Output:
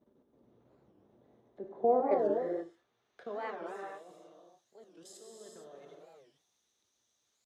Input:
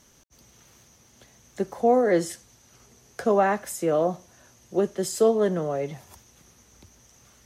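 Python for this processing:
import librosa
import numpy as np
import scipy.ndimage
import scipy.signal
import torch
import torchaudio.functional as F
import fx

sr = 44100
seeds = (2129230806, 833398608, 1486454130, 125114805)

y = fx.peak_eq(x, sr, hz=3700.0, db=12.0, octaves=0.36)
y = fx.comb_fb(y, sr, f0_hz=580.0, decay_s=0.31, harmonics='all', damping=0.0, mix_pct=40)
y = fx.filter_sweep_bandpass(y, sr, from_hz=440.0, to_hz=7100.0, start_s=1.09, end_s=4.37, q=0.86)
y = fx.curve_eq(y, sr, hz=(170.0, 310.0, 5800.0), db=(0, 4, -19))
y = fx.level_steps(y, sr, step_db=14)
y = fx.rev_gated(y, sr, seeds[0], gate_ms=490, shape='flat', drr_db=-1.0)
y = fx.record_warp(y, sr, rpm=45.0, depth_cents=250.0)
y = y * 10.0 ** (2.0 / 20.0)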